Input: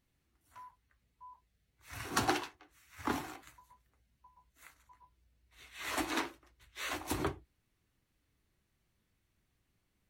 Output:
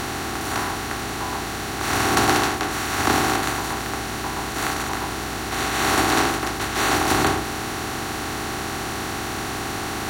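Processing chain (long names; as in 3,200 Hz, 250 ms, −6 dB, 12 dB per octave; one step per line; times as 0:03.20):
compressor on every frequency bin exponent 0.2
level +8 dB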